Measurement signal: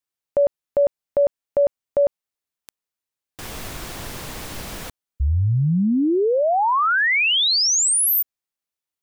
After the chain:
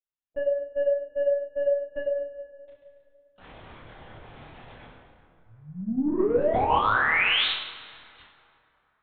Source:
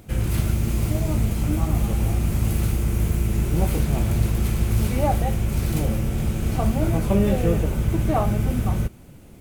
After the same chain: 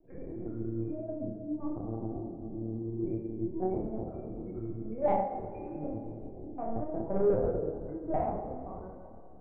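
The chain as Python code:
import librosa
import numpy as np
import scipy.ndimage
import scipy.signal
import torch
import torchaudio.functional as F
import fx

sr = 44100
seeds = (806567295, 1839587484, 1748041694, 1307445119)

y = scipy.signal.sosfilt(scipy.signal.butter(4, 240.0, 'highpass', fs=sr, output='sos'), x)
y = fx.spec_gate(y, sr, threshold_db=-10, keep='strong')
y = fx.room_flutter(y, sr, wall_m=7.9, rt60_s=0.99)
y = 10.0 ** (-14.0 / 20.0) * np.tanh(y / 10.0 ** (-14.0 / 20.0))
y = fx.lpc_vocoder(y, sr, seeds[0], excitation='pitch_kept', order=8)
y = fx.doubler(y, sr, ms=27.0, db=-4)
y = fx.rev_plate(y, sr, seeds[1], rt60_s=3.0, hf_ratio=0.55, predelay_ms=0, drr_db=6.5)
y = fx.upward_expand(y, sr, threshold_db=-28.0, expansion=1.5)
y = y * 10.0 ** (-5.0 / 20.0)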